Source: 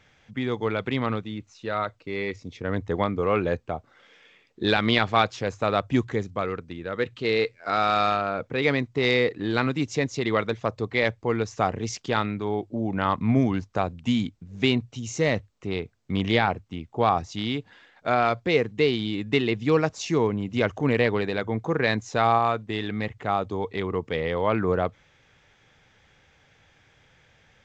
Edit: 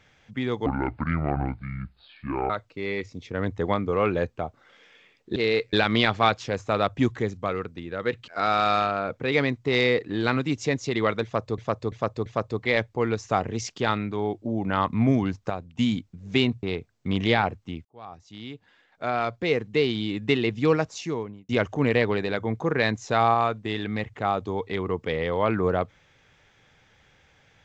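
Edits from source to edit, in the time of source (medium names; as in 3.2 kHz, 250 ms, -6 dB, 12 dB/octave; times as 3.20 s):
0.66–1.80 s: speed 62%
7.21–7.58 s: move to 4.66 s
10.54–10.88 s: loop, 4 plays
13.78–14.07 s: gain -6.5 dB
14.91–15.67 s: delete
16.89–19.04 s: fade in
19.77–20.53 s: fade out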